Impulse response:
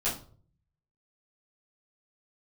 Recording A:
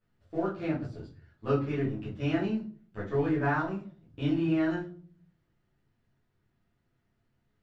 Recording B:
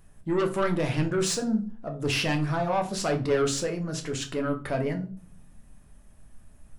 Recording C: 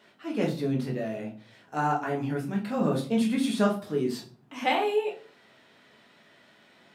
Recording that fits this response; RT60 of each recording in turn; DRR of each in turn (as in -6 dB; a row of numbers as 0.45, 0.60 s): A; not exponential, not exponential, not exponential; -10.5, 3.5, -1.5 dB